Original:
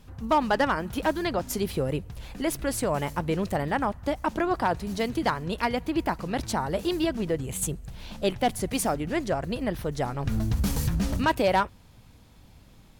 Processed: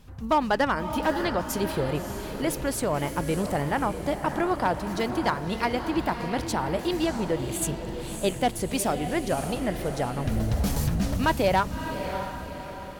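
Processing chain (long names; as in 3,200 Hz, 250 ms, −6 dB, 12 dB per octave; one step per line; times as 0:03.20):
feedback delay with all-pass diffusion 611 ms, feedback 49%, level −8 dB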